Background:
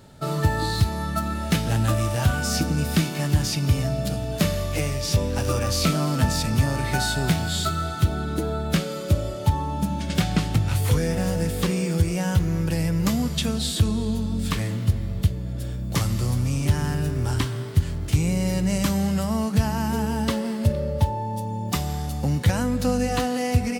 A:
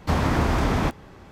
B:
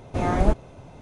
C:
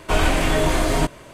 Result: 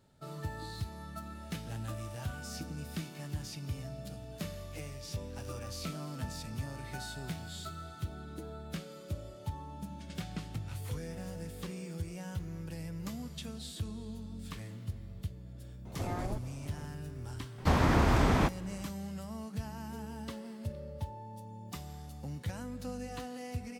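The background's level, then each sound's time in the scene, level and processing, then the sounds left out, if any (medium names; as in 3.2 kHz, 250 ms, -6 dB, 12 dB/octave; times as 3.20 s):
background -18 dB
15.85 s: add B -6.5 dB + compression, threshold -26 dBFS
17.58 s: add A -4 dB
not used: C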